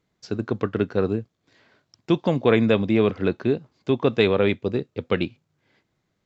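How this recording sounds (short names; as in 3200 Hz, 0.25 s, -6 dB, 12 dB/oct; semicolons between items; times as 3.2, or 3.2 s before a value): noise floor -75 dBFS; spectral tilt -5.5 dB/oct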